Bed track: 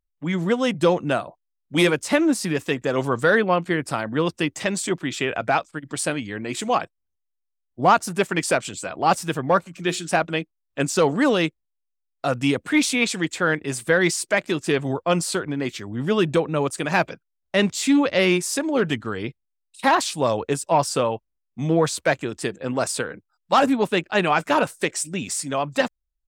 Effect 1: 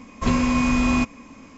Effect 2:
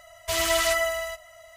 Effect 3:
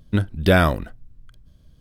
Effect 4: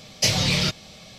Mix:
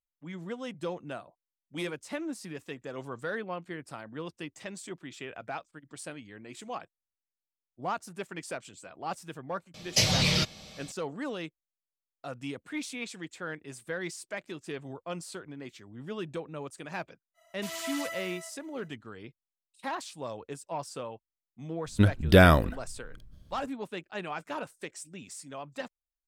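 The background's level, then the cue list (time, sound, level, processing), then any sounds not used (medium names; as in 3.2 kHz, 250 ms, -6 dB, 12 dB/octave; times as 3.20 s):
bed track -17 dB
9.74 s: add 4 -3.5 dB
17.34 s: add 2 -14 dB, fades 0.05 s + high-pass 220 Hz
21.86 s: add 3 -1.5 dB
not used: 1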